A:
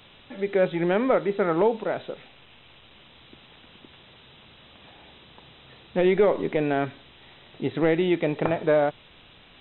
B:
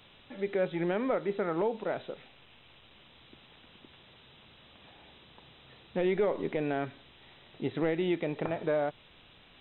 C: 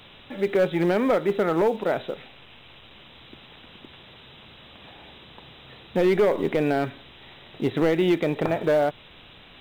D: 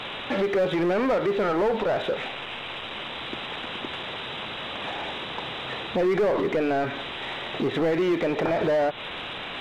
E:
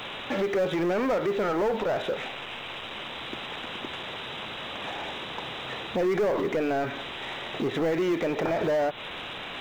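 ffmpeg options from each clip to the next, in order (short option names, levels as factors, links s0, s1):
-af "alimiter=limit=0.188:level=0:latency=1:release=178,volume=0.531"
-filter_complex "[0:a]asplit=2[s0][s1];[s1]acrusher=bits=5:mode=log:mix=0:aa=0.000001,volume=0.335[s2];[s0][s2]amix=inputs=2:normalize=0,volume=11.2,asoftclip=hard,volume=0.0891,volume=2.11"
-filter_complex "[0:a]alimiter=level_in=1.06:limit=0.0631:level=0:latency=1:release=158,volume=0.944,asplit=2[s0][s1];[s1]highpass=f=720:p=1,volume=8.91,asoftclip=type=tanh:threshold=0.0596[s2];[s0][s2]amix=inputs=2:normalize=0,lowpass=f=1700:p=1,volume=0.501,volume=2.37"
-af "aexciter=amount=2.2:drive=3.4:freq=5600,volume=0.75"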